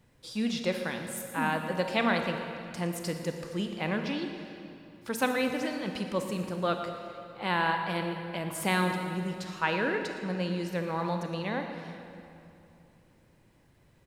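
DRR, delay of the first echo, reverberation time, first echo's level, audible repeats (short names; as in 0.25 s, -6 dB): 4.5 dB, 0.115 s, 2.7 s, -15.5 dB, 1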